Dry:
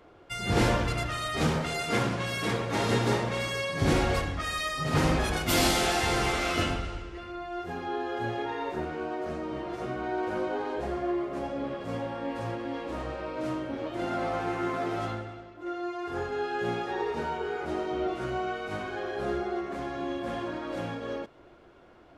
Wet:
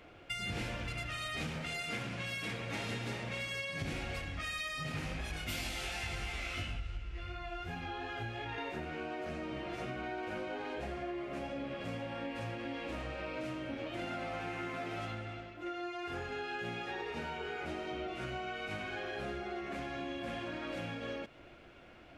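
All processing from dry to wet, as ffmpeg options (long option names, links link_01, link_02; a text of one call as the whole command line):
ffmpeg -i in.wav -filter_complex "[0:a]asettb=1/sr,asplit=3[link_01][link_02][link_03];[link_01]atrim=end=4.924[link_04];[link_02]atrim=start=4.92:end=8.58,asetpts=PTS-STARTPTS,afade=type=in:duration=0.004:curve=qsin,afade=type=out:start_time=3.656:duration=0.004:curve=qsin,flanger=delay=18:depth=2.9:speed=2.8,asubboost=boost=5:cutoff=130[link_05];[link_03]atrim=start=8.576[link_06];[link_04][link_05]acrossfade=duration=0.004:curve1=hsin:curve2=qsin[link_07];[link_07][link_06]acrossfade=duration=0.004:curve1=qsin:curve2=hsin,equalizer=frequency=400:width_type=o:width=0.67:gain=-6,equalizer=frequency=1000:width_type=o:width=0.67:gain=-6,equalizer=frequency=2500:width_type=o:width=0.67:gain=8,acompressor=threshold=-38dB:ratio=6,volume=1dB" out.wav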